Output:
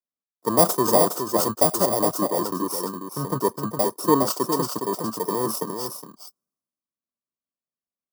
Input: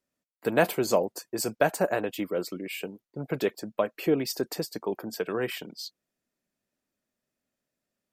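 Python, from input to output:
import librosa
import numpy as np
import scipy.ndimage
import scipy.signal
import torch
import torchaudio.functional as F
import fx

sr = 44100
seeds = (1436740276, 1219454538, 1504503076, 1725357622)

p1 = fx.bit_reversed(x, sr, seeds[0], block=32)
p2 = fx.curve_eq(p1, sr, hz=(500.0, 1300.0, 2100.0, 5100.0), db=(0, 10, -21, -3))
p3 = fx.over_compress(p2, sr, threshold_db=-35.0, ratio=-1.0)
p4 = p2 + (p3 * librosa.db_to_amplitude(-2.5))
p5 = fx.notch_comb(p4, sr, f0_hz=830.0)
p6 = p5 + fx.echo_single(p5, sr, ms=413, db=-4.5, dry=0)
p7 = fx.band_widen(p6, sr, depth_pct=70)
y = p7 * librosa.db_to_amplitude(3.5)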